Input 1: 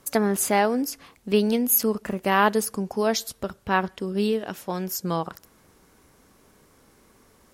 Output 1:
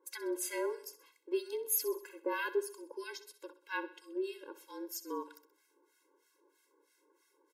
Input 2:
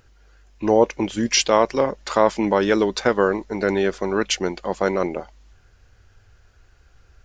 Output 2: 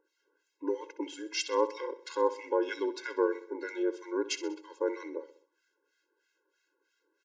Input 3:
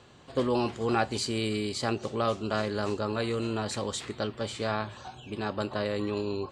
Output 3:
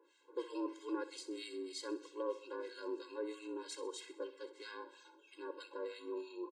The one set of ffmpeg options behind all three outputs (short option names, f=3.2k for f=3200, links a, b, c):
-filter_complex "[0:a]afreqshift=-36,acrossover=split=1300[a][b];[a]aeval=exprs='val(0)*(1-1/2+1/2*cos(2*PI*3.1*n/s))':c=same[c];[b]aeval=exprs='val(0)*(1-1/2-1/2*cos(2*PI*3.1*n/s))':c=same[d];[c][d]amix=inputs=2:normalize=0,asplit=2[e][f];[f]aecho=0:1:64|128|192|256:0.188|0.0904|0.0434|0.0208[g];[e][g]amix=inputs=2:normalize=0,afftfilt=real='re*eq(mod(floor(b*sr/1024/280),2),1)':imag='im*eq(mod(floor(b*sr/1024/280),2),1)':win_size=1024:overlap=0.75,volume=-7dB"